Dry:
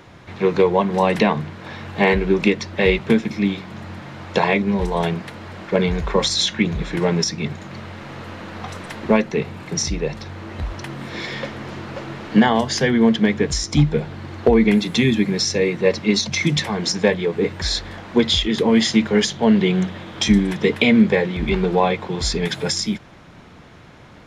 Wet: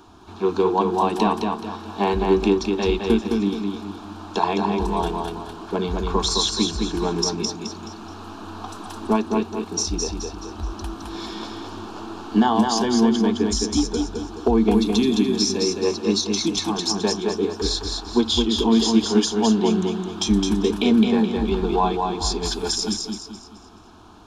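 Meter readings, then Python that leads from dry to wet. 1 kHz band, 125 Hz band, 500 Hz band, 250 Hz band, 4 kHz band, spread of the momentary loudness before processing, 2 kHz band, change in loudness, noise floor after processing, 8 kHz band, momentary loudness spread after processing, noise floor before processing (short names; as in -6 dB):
+1.0 dB, -6.5 dB, -3.0 dB, -1.5 dB, -1.5 dB, 16 LU, -11.0 dB, -2.5 dB, -41 dBFS, +0.5 dB, 15 LU, -44 dBFS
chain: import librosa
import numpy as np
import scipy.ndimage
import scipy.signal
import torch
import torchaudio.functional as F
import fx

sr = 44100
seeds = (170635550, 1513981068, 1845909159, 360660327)

p1 = fx.fixed_phaser(x, sr, hz=540.0, stages=6)
y = p1 + fx.echo_feedback(p1, sr, ms=213, feedback_pct=38, wet_db=-4.0, dry=0)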